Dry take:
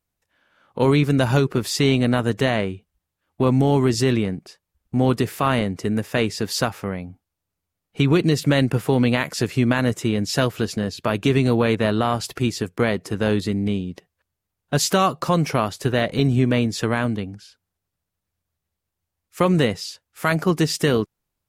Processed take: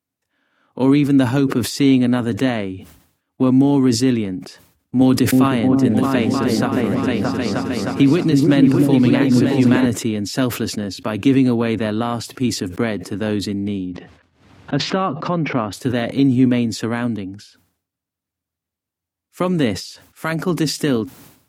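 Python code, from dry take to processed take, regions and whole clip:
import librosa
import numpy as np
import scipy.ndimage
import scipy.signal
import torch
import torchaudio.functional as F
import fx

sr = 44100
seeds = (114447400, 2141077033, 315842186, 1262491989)

y = fx.chain(x, sr, fx.echo_opening(ms=311, hz=400, octaves=2, feedback_pct=70, wet_db=0),
    fx.band_squash(depth_pct=70), at=(5.01, 9.86))
y = fx.chain(y, sr, fx.env_lowpass_down(base_hz=2500.0, full_db=-16.0),
    fx.lowpass(hz=3500.0, slope=12),
    fx.pre_swell(db_per_s=100.0), at=(13.86, 15.73))
y = scipy.signal.sosfilt(scipy.signal.butter(4, 83.0, 'highpass', fs=sr, output='sos'), y)
y = fx.peak_eq(y, sr, hz=270.0, db=11.5, octaves=0.35)
y = fx.sustainer(y, sr, db_per_s=94.0)
y = F.gain(torch.from_numpy(y), -2.5).numpy()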